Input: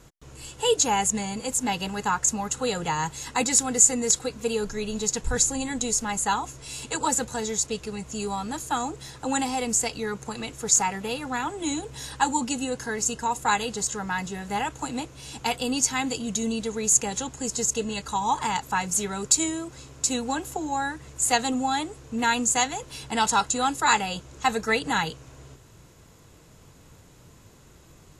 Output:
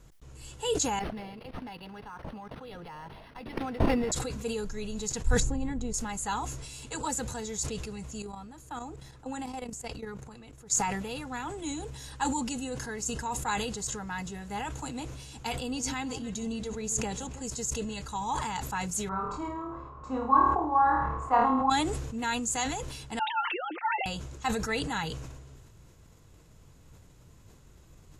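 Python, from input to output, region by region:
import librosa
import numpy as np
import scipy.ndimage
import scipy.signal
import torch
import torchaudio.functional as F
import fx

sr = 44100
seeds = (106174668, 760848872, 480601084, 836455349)

y = fx.chain(x, sr, fx.level_steps(step_db=17),
    fx.highpass(hz=270.0, slope=6),
    fx.resample_linear(factor=6), at=(0.99, 4.12))
y = fx.chain(y, sr, fx.lowpass(hz=1100.0, slope=6),
    fx.low_shelf(hz=200.0, db=7.5), at=(5.4, 5.94))
y = fx.chain(y, sr, fx.level_steps(step_db=14),
    fx.peak_eq(hz=6900.0, db=-6.0, octaves=2.7), at=(8.22, 10.71))
y = fx.chain(y, sr, fx.high_shelf(hz=6600.0, db=-6.5),
    fx.echo_alternate(ms=149, hz=1200.0, feedback_pct=52, wet_db=-11.5), at=(15.53, 17.42))
y = fx.chain(y, sr, fx.lowpass_res(hz=1100.0, q=13.0),
    fx.room_flutter(wall_m=4.6, rt60_s=0.52), at=(19.09, 21.7))
y = fx.chain(y, sr, fx.sine_speech(),
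    fx.highpass(hz=1400.0, slope=6),
    fx.comb(ms=5.7, depth=0.69), at=(23.19, 24.06))
y = fx.low_shelf(y, sr, hz=100.0, db=11.0)
y = fx.sustainer(y, sr, db_per_s=38.0)
y = y * librosa.db_to_amplitude(-8.5)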